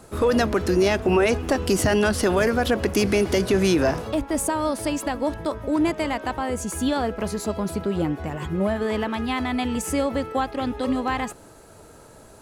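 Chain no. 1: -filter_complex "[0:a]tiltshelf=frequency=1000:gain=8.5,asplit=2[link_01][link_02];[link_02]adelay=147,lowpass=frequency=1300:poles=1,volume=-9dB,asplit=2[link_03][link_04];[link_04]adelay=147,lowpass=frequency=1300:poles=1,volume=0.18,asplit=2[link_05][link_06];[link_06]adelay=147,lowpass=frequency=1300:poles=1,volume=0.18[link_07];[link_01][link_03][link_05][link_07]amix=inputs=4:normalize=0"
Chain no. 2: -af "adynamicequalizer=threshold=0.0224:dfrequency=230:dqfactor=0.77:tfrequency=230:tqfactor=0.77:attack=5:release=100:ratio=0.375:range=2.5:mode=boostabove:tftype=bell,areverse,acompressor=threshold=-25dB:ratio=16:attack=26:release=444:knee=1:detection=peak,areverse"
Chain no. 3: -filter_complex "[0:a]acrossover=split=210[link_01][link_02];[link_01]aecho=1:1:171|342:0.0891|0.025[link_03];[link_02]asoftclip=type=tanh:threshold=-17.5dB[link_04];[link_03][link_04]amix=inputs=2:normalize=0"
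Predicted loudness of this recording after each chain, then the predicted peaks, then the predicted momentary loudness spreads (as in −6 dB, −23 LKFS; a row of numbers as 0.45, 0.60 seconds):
−17.5, −29.5, −25.0 LKFS; −2.5, −14.5, −10.5 dBFS; 8, 3, 6 LU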